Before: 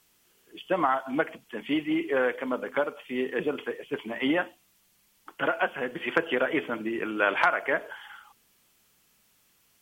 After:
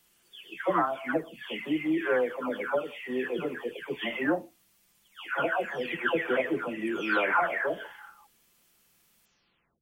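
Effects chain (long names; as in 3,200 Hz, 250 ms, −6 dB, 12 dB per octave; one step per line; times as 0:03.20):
every frequency bin delayed by itself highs early, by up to 564 ms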